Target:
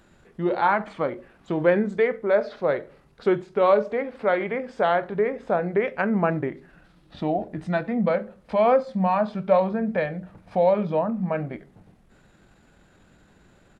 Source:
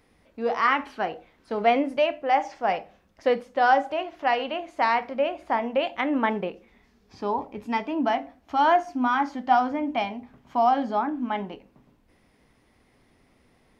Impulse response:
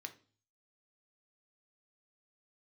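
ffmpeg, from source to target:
-filter_complex "[0:a]asplit=2[link_01][link_02];[link_02]acompressor=threshold=-34dB:ratio=10,volume=0dB[link_03];[link_01][link_03]amix=inputs=2:normalize=0,asetrate=33038,aresample=44100,atempo=1.33484"

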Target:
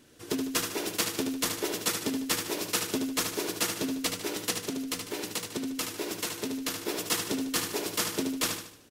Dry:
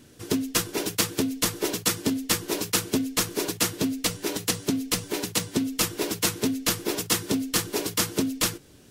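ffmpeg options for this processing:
ffmpeg -i in.wav -filter_complex "[0:a]bass=frequency=250:gain=-8,treble=frequency=4000:gain=-2,asettb=1/sr,asplit=3[link_01][link_02][link_03];[link_01]atrim=end=4.534[link_04];[link_02]atrim=start=4.53:end=6.82,asetpts=PTS-STARTPTS,afade=type=in:duration=0.004:curve=qsin,afade=type=out:start_time=2.286:duration=0.004:curve=qsin,acompressor=threshold=-26dB:ratio=6[link_05];[link_03]atrim=start=6.816[link_06];[link_04][link_05]acrossfade=duration=0.004:curve1=hsin:curve2=qsin[link_07];[link_07][link_06]acrossfade=duration=0.004:curve1=qsin:curve2=hsin,aecho=1:1:75|150|225|300|375:0.501|0.216|0.0927|0.0398|0.0171,volume=-3.5dB" out.wav

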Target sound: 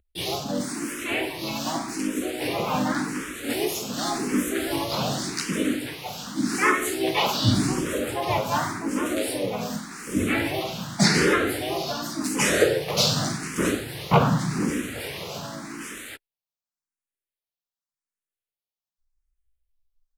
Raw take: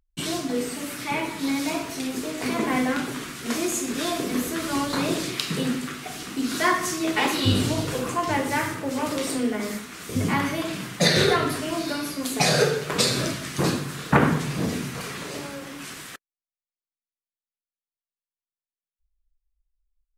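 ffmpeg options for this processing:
ffmpeg -i in.wav -filter_complex "[0:a]asplit=4[link_01][link_02][link_03][link_04];[link_02]asetrate=22050,aresample=44100,atempo=2,volume=-16dB[link_05];[link_03]asetrate=35002,aresample=44100,atempo=1.25992,volume=-6dB[link_06];[link_04]asetrate=52444,aresample=44100,atempo=0.840896,volume=-1dB[link_07];[link_01][link_05][link_06][link_07]amix=inputs=4:normalize=0,asplit=2[link_08][link_09];[link_09]afreqshift=0.87[link_10];[link_08][link_10]amix=inputs=2:normalize=1" out.wav

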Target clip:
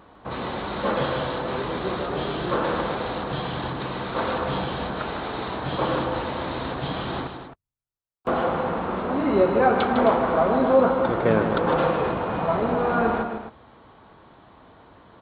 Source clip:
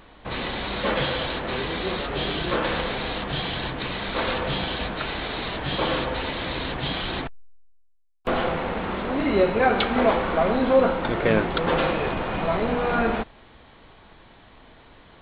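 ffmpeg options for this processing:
ffmpeg -i in.wav -af "highpass=74,highshelf=frequency=1600:width_type=q:width=1.5:gain=-6.5,aecho=1:1:154.5|262.4:0.398|0.282" out.wav

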